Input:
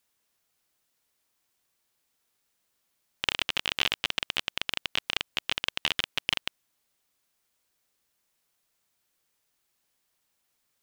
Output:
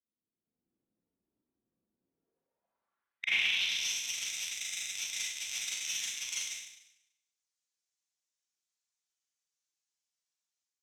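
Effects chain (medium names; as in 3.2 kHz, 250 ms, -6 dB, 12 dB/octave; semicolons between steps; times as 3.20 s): coarse spectral quantiser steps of 15 dB; RIAA curve playback; gate with hold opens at -60 dBFS; level rider gain up to 12.5 dB; hard clipper -26 dBFS, distortion 0 dB; band-pass sweep 270 Hz -> 6.6 kHz, 1.98–3.90 s; Schroeder reverb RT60 0.84 s, combs from 33 ms, DRR -9.5 dB; trim +3.5 dB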